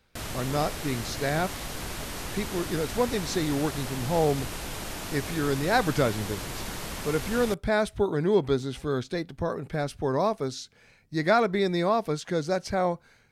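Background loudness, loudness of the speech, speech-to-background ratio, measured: -35.5 LUFS, -28.0 LUFS, 7.5 dB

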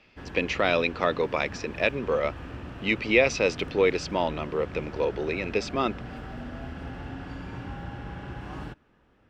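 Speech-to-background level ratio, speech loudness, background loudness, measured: 13.5 dB, -26.5 LUFS, -40.0 LUFS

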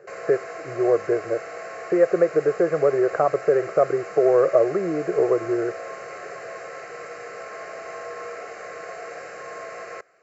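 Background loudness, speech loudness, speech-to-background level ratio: -36.0 LUFS, -22.0 LUFS, 14.0 dB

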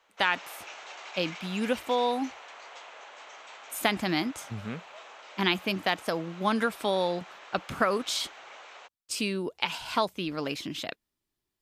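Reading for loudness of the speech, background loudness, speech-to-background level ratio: -30.0 LUFS, -45.5 LUFS, 15.5 dB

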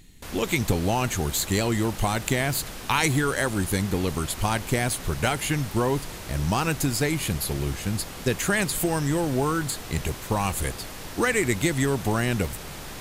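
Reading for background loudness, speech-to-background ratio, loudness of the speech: -37.5 LUFS, 11.5 dB, -26.0 LUFS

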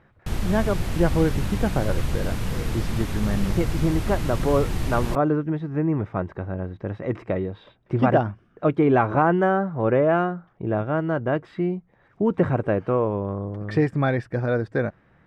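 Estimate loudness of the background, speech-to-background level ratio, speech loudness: -29.0 LUFS, 4.5 dB, -24.5 LUFS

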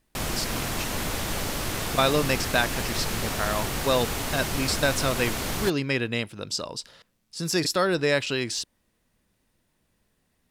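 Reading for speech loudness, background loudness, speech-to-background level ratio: -27.0 LUFS, -29.0 LUFS, 2.0 dB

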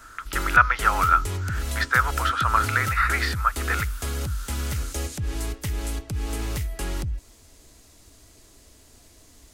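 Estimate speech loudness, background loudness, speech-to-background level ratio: -22.5 LUFS, -30.0 LUFS, 7.5 dB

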